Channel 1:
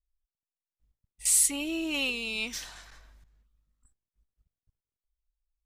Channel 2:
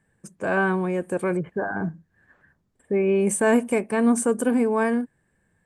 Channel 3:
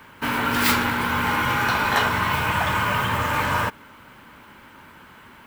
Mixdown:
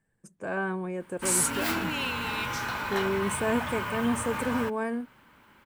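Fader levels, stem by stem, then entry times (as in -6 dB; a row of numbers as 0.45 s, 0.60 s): -3.0 dB, -8.5 dB, -11.0 dB; 0.00 s, 0.00 s, 1.00 s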